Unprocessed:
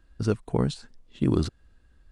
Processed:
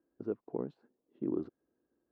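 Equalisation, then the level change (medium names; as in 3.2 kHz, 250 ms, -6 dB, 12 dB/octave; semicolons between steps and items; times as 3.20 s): dynamic bell 360 Hz, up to -5 dB, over -37 dBFS, Q 1.1; ladder band-pass 400 Hz, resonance 45%; +3.5 dB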